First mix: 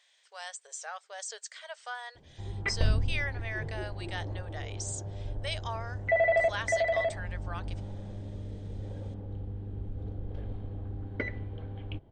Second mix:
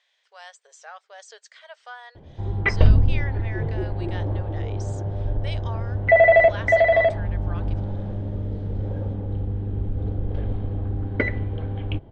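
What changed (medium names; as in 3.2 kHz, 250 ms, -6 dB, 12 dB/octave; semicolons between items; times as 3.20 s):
background +11.5 dB; master: add distance through air 120 m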